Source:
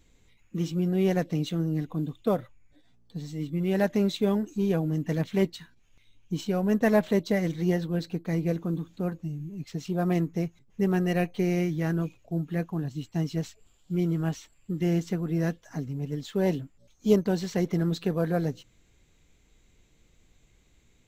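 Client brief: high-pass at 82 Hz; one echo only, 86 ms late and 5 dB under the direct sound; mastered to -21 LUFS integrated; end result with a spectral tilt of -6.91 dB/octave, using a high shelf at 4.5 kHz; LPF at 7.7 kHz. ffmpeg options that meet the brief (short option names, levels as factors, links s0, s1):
-af "highpass=82,lowpass=7700,highshelf=f=4500:g=3,aecho=1:1:86:0.562,volume=2.11"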